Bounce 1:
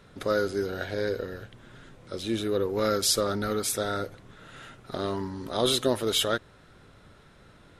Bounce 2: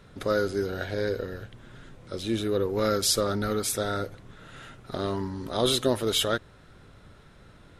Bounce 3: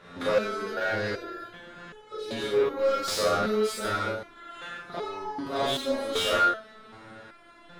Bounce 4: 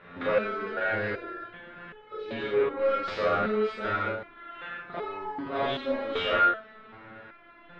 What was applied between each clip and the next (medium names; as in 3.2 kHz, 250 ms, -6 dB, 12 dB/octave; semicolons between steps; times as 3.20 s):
bass shelf 140 Hz +5 dB
Schroeder reverb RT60 0.44 s, combs from 27 ms, DRR -3 dB; overdrive pedal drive 25 dB, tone 1.8 kHz, clips at -6 dBFS; resonator arpeggio 2.6 Hz 88–430 Hz
four-pole ladder low-pass 3.1 kHz, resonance 30%; trim +5.5 dB